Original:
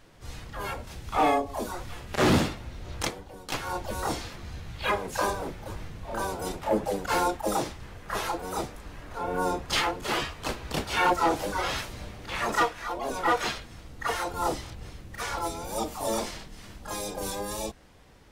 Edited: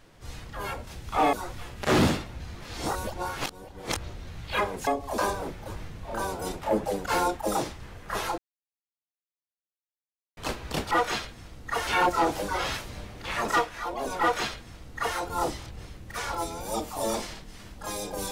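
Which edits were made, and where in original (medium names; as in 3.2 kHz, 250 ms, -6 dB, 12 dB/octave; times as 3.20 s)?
1.33–1.64 s: move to 5.18 s
2.71–4.58 s: reverse
8.38–10.37 s: mute
13.24–14.20 s: copy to 10.91 s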